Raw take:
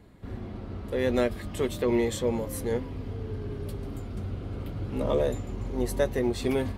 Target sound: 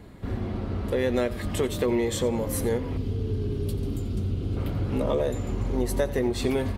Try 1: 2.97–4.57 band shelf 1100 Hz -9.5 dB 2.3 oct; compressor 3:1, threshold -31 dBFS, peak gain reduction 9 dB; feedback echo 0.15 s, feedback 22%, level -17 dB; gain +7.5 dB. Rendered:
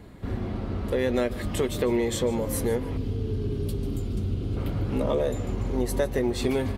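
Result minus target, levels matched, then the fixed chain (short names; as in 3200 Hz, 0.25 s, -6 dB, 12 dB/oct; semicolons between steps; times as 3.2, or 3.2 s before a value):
echo 62 ms late
2.97–4.57 band shelf 1100 Hz -9.5 dB 2.3 oct; compressor 3:1, threshold -31 dBFS, peak gain reduction 9 dB; feedback echo 88 ms, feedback 22%, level -17 dB; gain +7.5 dB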